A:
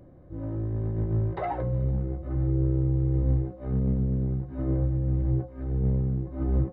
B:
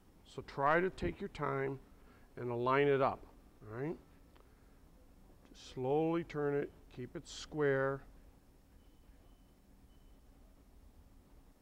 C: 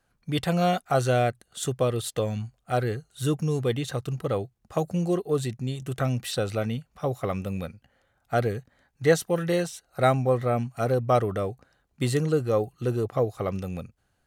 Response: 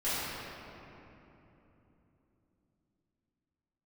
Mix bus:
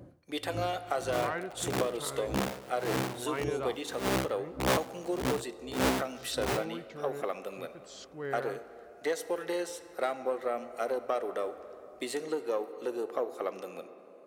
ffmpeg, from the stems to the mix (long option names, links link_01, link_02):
-filter_complex "[0:a]aeval=exprs='(mod(12.6*val(0)+1,2)-1)/12.6':channel_layout=same,aeval=exprs='val(0)*pow(10,-26*(0.5-0.5*cos(2*PI*1.7*n/s))/20)':channel_layout=same,volume=2.5dB[link_01];[1:a]equalizer=frequency=6500:width_type=o:width=2.2:gain=6,adelay=600,volume=-5.5dB[link_02];[2:a]aeval=exprs='0.447*(cos(1*acos(clip(val(0)/0.447,-1,1)))-cos(1*PI/2))+0.0282*(cos(6*acos(clip(val(0)/0.447,-1,1)))-cos(6*PI/2))':channel_layout=same,acompressor=threshold=-23dB:ratio=5,highpass=frequency=310:width=0.5412,highpass=frequency=310:width=1.3066,volume=-4dB,asplit=3[link_03][link_04][link_05];[link_04]volume=-20dB[link_06];[link_05]apad=whole_len=296546[link_07];[link_01][link_07]sidechaincompress=threshold=-41dB:ratio=5:attack=26:release=214[link_08];[3:a]atrim=start_sample=2205[link_09];[link_06][link_09]afir=irnorm=-1:irlink=0[link_10];[link_08][link_02][link_03][link_10]amix=inputs=4:normalize=0,highpass=80"